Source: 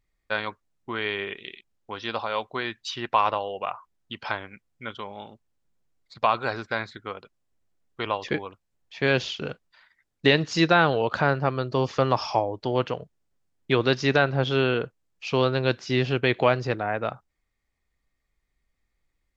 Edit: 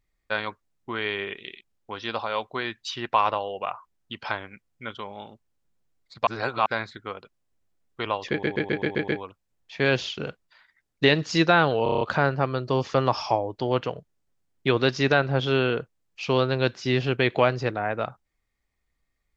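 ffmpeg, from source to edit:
-filter_complex "[0:a]asplit=15[s0][s1][s2][s3][s4][s5][s6][s7][s8][s9][s10][s11][s12][s13][s14];[s0]atrim=end=6.272[s15];[s1]atrim=start=6.268:end=6.662,asetpts=PTS-STARTPTS,areverse[s16];[s2]atrim=start=6.658:end=8.432[s17];[s3]atrim=start=8.298:end=8.432[s18];[s4]atrim=start=8.298:end=8.432[s19];[s5]atrim=start=8.298:end=8.432[s20];[s6]atrim=start=8.298:end=8.432[s21];[s7]atrim=start=8.298:end=8.432[s22];[s8]atrim=start=8.298:end=11.082[s23];[s9]atrim=start=11.048:end=11.082[s24];[s10]atrim=start=11.048:end=11.082[s25];[s11]atrim=start=11.048:end=11.082[s26];[s12]atrim=start=11.048:end=11.082[s27];[s13]atrim=start=11.048:end=11.082[s28];[s14]atrim=start=11.048[s29];[s15][s16]acrossfade=d=0.004:c1=hsin:c2=hsin[s30];[s30][s17]acrossfade=d=0.004:c1=hsin:c2=hsin[s31];[s31][s18]acrossfade=d=0.004:c1=hsin:c2=hsin[s32];[s32][s19]acrossfade=d=0.004:c1=hsin:c2=hsin[s33];[s33][s20]acrossfade=d=0.004:c1=hsin:c2=hsin[s34];[s34][s21]acrossfade=d=0.004:c1=hsin:c2=hsin[s35];[s35][s22]acrossfade=d=0.004:c1=hsin:c2=hsin[s36];[s36][s23]acrossfade=d=0.004:c1=hsin:c2=hsin[s37];[s37][s24]acrossfade=d=0.004:c1=hsin:c2=hsin[s38];[s38][s25]acrossfade=d=0.004:c1=hsin:c2=hsin[s39];[s39][s26]acrossfade=d=0.004:c1=hsin:c2=hsin[s40];[s40][s27]acrossfade=d=0.004:c1=hsin:c2=hsin[s41];[s41][s28]acrossfade=d=0.004:c1=hsin:c2=hsin[s42];[s42][s29]acrossfade=d=0.004:c1=hsin:c2=hsin"

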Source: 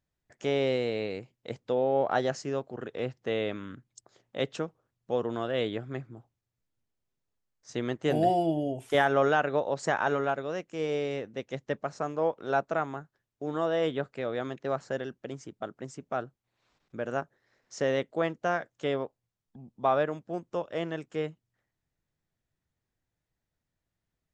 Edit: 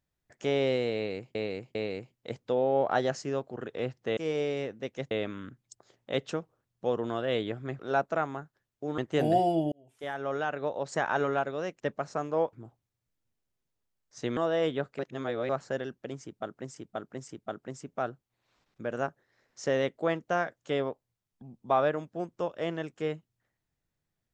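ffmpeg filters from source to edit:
-filter_complex "[0:a]asplit=15[s0][s1][s2][s3][s4][s5][s6][s7][s8][s9][s10][s11][s12][s13][s14];[s0]atrim=end=1.352[s15];[s1]atrim=start=0.948:end=1.352[s16];[s2]atrim=start=0.948:end=3.372[s17];[s3]atrim=start=10.708:end=11.652[s18];[s4]atrim=start=3.368:end=6.052[s19];[s5]atrim=start=12.378:end=13.572[s20];[s6]atrim=start=7.888:end=8.63,asetpts=PTS-STARTPTS,afade=t=out:st=0.738:d=0.004:c=hsin[s21];[s7]atrim=start=8.63:end=10.712,asetpts=PTS-STARTPTS,afade=t=in:d=1.57[s22];[s8]atrim=start=11.648:end=12.382[s23];[s9]atrim=start=6.048:end=7.892[s24];[s10]atrim=start=13.568:end=14.192[s25];[s11]atrim=start=14.188:end=14.692,asetpts=PTS-STARTPTS,areverse[s26];[s12]atrim=start=14.688:end=15.962[s27];[s13]atrim=start=15.428:end=15.962[s28];[s14]atrim=start=15.428[s29];[s15][s16]acrossfade=d=0.004:c1=hsin:c2=hsin[s30];[s30][s17]acrossfade=d=0.004:c1=hsin:c2=hsin[s31];[s31][s18]acrossfade=d=0.004:c1=hsin:c2=hsin[s32];[s32][s19]acrossfade=d=0.004:c1=hsin:c2=hsin[s33];[s33][s20]acrossfade=d=0.004:c1=hsin:c2=hsin[s34];[s21][s22]concat=n=2:v=0:a=1[s35];[s34][s35]acrossfade=d=0.004:c1=hsin:c2=hsin[s36];[s36][s23]acrossfade=d=0.004:c1=hsin:c2=hsin[s37];[s37][s24]acrossfade=d=0.004:c1=hsin:c2=hsin[s38];[s38][s25]acrossfade=d=0.004:c1=hsin:c2=hsin[s39];[s39][s26]acrossfade=d=0.004:c1=hsin:c2=hsin[s40];[s40][s27]acrossfade=d=0.004:c1=hsin:c2=hsin[s41];[s41][s28]acrossfade=d=0.004:c1=hsin:c2=hsin[s42];[s42][s29]acrossfade=d=0.004:c1=hsin:c2=hsin"

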